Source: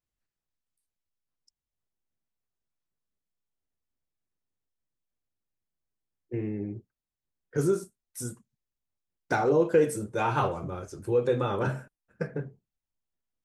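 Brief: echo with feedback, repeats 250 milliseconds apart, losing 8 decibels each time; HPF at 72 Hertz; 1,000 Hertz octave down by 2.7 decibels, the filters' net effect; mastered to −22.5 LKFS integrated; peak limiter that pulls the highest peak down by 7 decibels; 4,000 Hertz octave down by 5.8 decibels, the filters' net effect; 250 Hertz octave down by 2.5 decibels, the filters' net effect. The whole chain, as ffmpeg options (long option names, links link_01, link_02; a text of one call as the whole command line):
ffmpeg -i in.wav -af "highpass=72,equalizer=frequency=250:width_type=o:gain=-3.5,equalizer=frequency=1000:width_type=o:gain=-3,equalizer=frequency=4000:width_type=o:gain=-7.5,alimiter=limit=-20.5dB:level=0:latency=1,aecho=1:1:250|500|750|1000|1250:0.398|0.159|0.0637|0.0255|0.0102,volume=10dB" out.wav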